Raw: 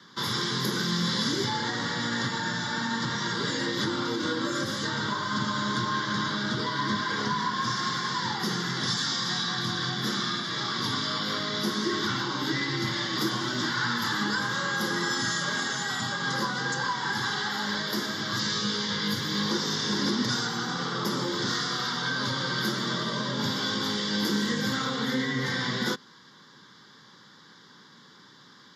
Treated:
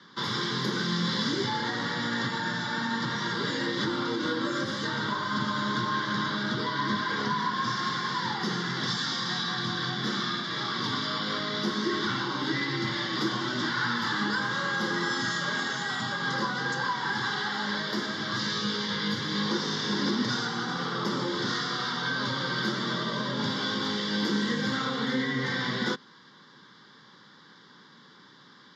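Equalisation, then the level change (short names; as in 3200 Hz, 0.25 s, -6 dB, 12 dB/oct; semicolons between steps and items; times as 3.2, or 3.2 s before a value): BPF 110–4700 Hz; 0.0 dB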